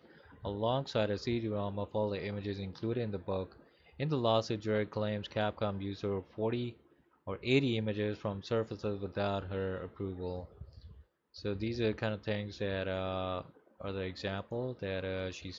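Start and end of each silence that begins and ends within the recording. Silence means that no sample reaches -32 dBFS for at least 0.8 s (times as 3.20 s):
10.36–11.45 s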